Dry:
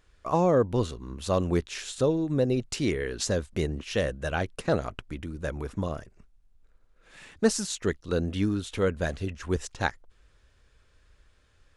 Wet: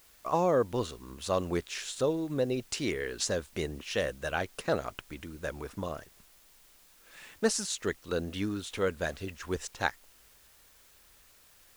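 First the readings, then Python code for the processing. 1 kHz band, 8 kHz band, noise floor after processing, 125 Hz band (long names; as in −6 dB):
−2.0 dB, −1.0 dB, −60 dBFS, −9.0 dB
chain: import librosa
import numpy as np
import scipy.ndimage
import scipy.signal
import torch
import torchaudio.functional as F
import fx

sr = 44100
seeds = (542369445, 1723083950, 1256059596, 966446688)

p1 = fx.low_shelf(x, sr, hz=300.0, db=-9.5)
p2 = fx.quant_dither(p1, sr, seeds[0], bits=8, dither='triangular')
p3 = p1 + (p2 * 10.0 ** (-9.0 / 20.0))
y = p3 * 10.0 ** (-3.5 / 20.0)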